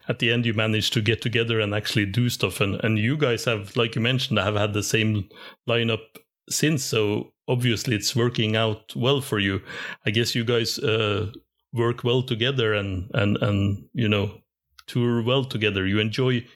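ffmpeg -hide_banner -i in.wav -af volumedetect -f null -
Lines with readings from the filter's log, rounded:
mean_volume: -23.8 dB
max_volume: -4.9 dB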